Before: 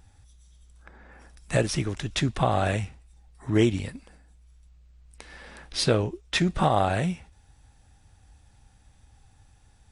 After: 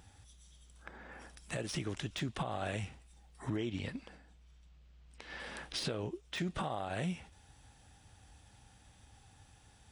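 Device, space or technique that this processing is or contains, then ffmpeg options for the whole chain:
broadcast voice chain: -filter_complex "[0:a]asettb=1/sr,asplit=3[link_01][link_02][link_03];[link_01]atrim=end=3.564[link_04];[link_02]atrim=start=3.56:end=5.4,asetpts=PTS-STARTPTS,afade=type=in:duration=0.004:curve=qsin,afade=type=out:start_time=1.836:duration=0.004:curve=qsin,lowpass=5400[link_05];[link_03]atrim=start=5.396[link_06];[link_04][link_05]acrossfade=duration=0.004:curve1=hsin:curve2=qsin[link_07];[link_07][link_06]acrossfade=duration=0.004:curve1=qsin:curve2=hsin,highpass=frequency=120:poles=1,deesser=0.65,acompressor=threshold=-34dB:ratio=3,equalizer=frequency=3100:width_type=o:width=0.34:gain=4,alimiter=level_in=3.5dB:limit=-24dB:level=0:latency=1:release=125,volume=-3.5dB,volume=1dB"

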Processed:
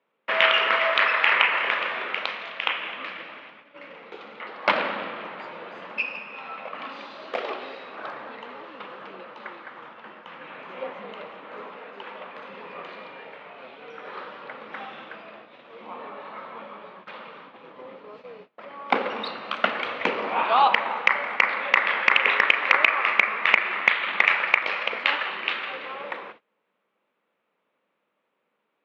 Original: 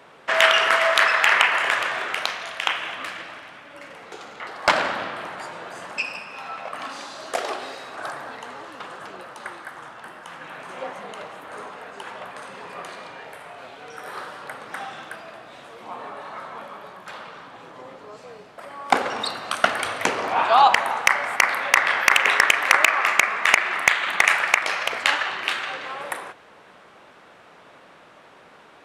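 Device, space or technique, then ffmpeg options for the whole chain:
kitchen radio: -filter_complex "[0:a]asettb=1/sr,asplit=3[link_01][link_02][link_03];[link_01]atrim=end=11.814[link_04];[link_02]atrim=start=11.81:end=12.36,asetpts=PTS-STARTPTS,afade=type=in:duration=0.004:curve=qsin,afade=type=out:start_time=0.546:duration=0.004:curve=qsin,highpass=170[link_05];[link_03]atrim=start=12.356[link_06];[link_04][link_05]acrossfade=duration=0.004:curve1=hsin:curve2=qsin[link_07];[link_07][link_06]acrossfade=duration=0.004:curve1=qsin:curve2=hsin,highpass=200,equalizer=frequency=210:width_type=q:width=4:gain=7,equalizer=frequency=500:width_type=q:width=4:gain=4,equalizer=frequency=720:width_type=q:width=4:gain=-5,equalizer=frequency=1600:width_type=q:width=4:gain=-4,equalizer=frequency=2400:width_type=q:width=4:gain=3,lowpass=frequency=3600:width=0.5412,lowpass=frequency=3600:width=1.3066,agate=range=-24dB:threshold=-43dB:ratio=16:detection=peak,volume=-2dB"

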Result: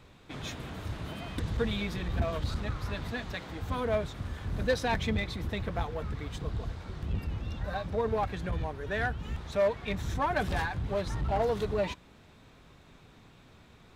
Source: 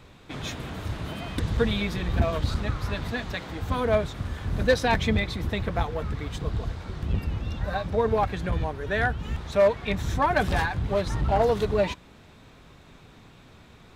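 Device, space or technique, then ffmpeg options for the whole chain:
parallel distortion: -filter_complex "[0:a]asplit=2[link_01][link_02];[link_02]asoftclip=type=hard:threshold=-25dB,volume=-8dB[link_03];[link_01][link_03]amix=inputs=2:normalize=0,volume=-8dB"

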